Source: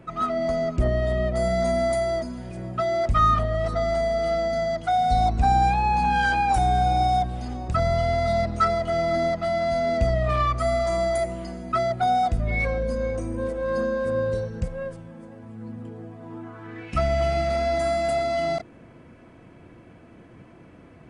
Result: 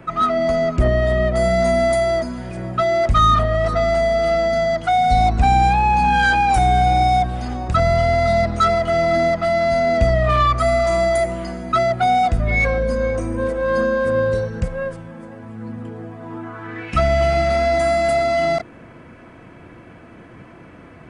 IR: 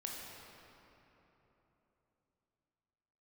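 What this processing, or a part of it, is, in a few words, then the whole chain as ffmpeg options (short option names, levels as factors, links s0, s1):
one-band saturation: -filter_complex "[0:a]acrossover=split=530|3200[s0][s1][s2];[s1]asoftclip=type=tanh:threshold=0.0668[s3];[s0][s3][s2]amix=inputs=3:normalize=0,equalizer=f=1500:t=o:w=1.8:g=5.5,volume=1.88"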